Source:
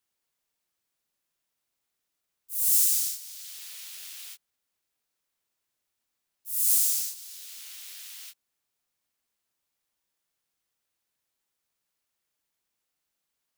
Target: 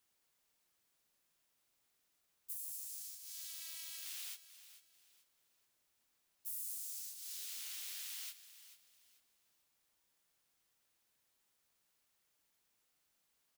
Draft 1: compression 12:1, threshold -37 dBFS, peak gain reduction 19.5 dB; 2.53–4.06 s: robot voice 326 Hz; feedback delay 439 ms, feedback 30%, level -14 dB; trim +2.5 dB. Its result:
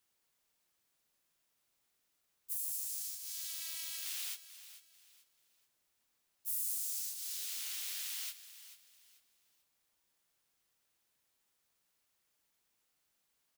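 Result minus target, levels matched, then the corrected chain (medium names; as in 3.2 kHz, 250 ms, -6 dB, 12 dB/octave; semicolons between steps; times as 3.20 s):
compression: peak gain reduction -7 dB
compression 12:1, threshold -44.5 dBFS, peak gain reduction 26.5 dB; 2.53–4.06 s: robot voice 326 Hz; feedback delay 439 ms, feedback 30%, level -14 dB; trim +2.5 dB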